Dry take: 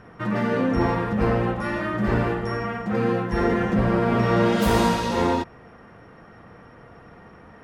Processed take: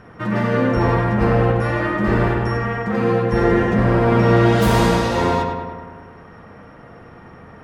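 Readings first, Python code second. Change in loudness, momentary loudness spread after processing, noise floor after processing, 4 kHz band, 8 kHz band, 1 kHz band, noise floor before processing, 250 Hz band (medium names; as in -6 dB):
+5.0 dB, 8 LU, -42 dBFS, +3.5 dB, +3.0 dB, +4.5 dB, -48 dBFS, +4.0 dB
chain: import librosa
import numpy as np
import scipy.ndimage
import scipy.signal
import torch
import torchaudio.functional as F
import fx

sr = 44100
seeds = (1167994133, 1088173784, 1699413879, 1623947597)

y = fx.echo_filtered(x, sr, ms=101, feedback_pct=66, hz=3200.0, wet_db=-4)
y = F.gain(torch.from_numpy(y), 3.0).numpy()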